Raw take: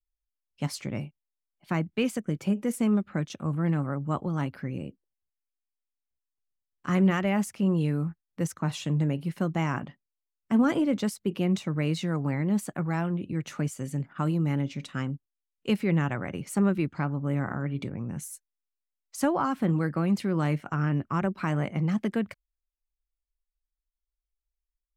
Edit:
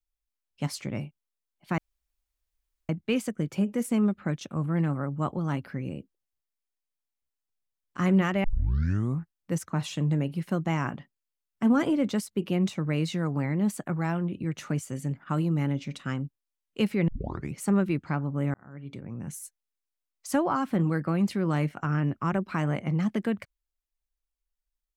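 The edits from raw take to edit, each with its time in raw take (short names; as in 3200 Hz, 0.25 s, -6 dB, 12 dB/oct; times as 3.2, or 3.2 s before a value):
1.78 insert room tone 1.11 s
7.33 tape start 0.76 s
15.97 tape start 0.47 s
17.43–18.32 fade in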